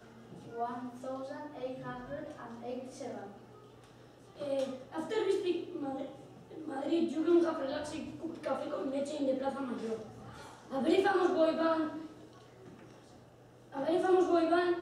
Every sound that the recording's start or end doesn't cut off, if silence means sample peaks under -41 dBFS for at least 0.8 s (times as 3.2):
4.4–12.68